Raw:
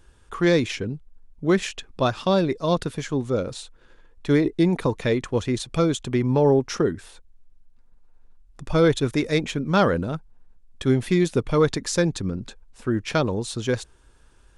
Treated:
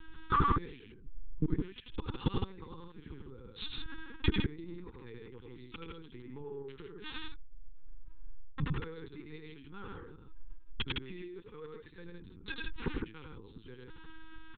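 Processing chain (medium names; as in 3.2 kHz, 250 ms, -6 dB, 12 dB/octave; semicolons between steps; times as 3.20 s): inverted gate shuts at -22 dBFS, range -34 dB; 11.25–11.76 s: brick-wall FIR high-pass 310 Hz; loudspeakers at several distances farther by 32 m -2 dB, 54 m -4 dB; LPC vocoder at 8 kHz pitch kept; Butterworth band-stop 640 Hz, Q 1.7; trim +7 dB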